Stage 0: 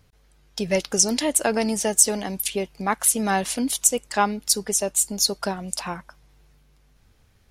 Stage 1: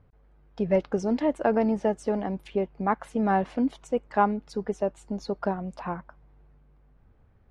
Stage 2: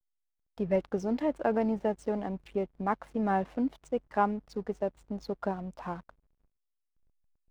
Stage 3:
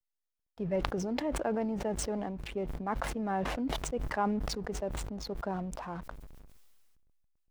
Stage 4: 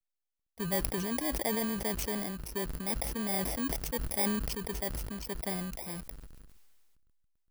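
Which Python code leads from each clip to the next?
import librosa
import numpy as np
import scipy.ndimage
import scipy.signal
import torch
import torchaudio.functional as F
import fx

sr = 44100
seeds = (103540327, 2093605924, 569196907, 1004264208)

y1 = scipy.signal.sosfilt(scipy.signal.butter(2, 1200.0, 'lowpass', fs=sr, output='sos'), x)
y2 = fx.backlash(y1, sr, play_db=-44.5)
y2 = F.gain(torch.from_numpy(y2), -4.5).numpy()
y3 = fx.sustainer(y2, sr, db_per_s=25.0)
y3 = F.gain(torch.from_numpy(y3), -5.0).numpy()
y4 = fx.bit_reversed(y3, sr, seeds[0], block=32)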